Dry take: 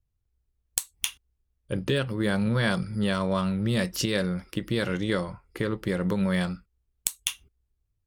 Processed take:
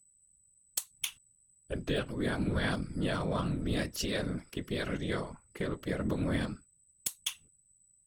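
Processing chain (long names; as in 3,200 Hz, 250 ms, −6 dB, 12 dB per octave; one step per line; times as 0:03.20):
steady tone 8,000 Hz −57 dBFS
random phases in short frames
level −6.5 dB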